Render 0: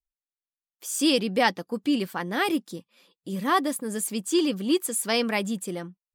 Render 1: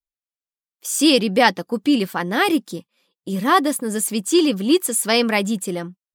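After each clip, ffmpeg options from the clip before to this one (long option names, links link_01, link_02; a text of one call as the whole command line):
ffmpeg -i in.wav -af "agate=range=-13dB:threshold=-44dB:ratio=16:detection=peak,volume=7dB" out.wav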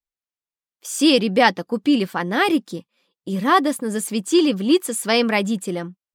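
ffmpeg -i in.wav -af "highshelf=frequency=8100:gain=-9.5" out.wav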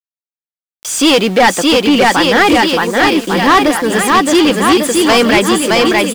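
ffmpeg -i in.wav -filter_complex "[0:a]aecho=1:1:620|1147|1595|1976|2299:0.631|0.398|0.251|0.158|0.1,asplit=2[link_01][link_02];[link_02]highpass=frequency=720:poles=1,volume=24dB,asoftclip=type=tanh:threshold=-0.5dB[link_03];[link_01][link_03]amix=inputs=2:normalize=0,lowpass=frequency=4000:poles=1,volume=-6dB,aeval=exprs='val(0)*gte(abs(val(0)),0.0596)':channel_layout=same" out.wav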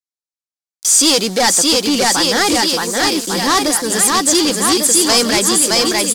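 ffmpeg -i in.wav -filter_complex "[0:a]aexciter=amount=6.8:drive=5.8:freq=4100,asplit=2[link_01][link_02];[link_02]acrusher=bits=2:mode=log:mix=0:aa=0.000001,volume=-10dB[link_03];[link_01][link_03]amix=inputs=2:normalize=0,adynamicsmooth=sensitivity=8:basefreq=5000,volume=-9dB" out.wav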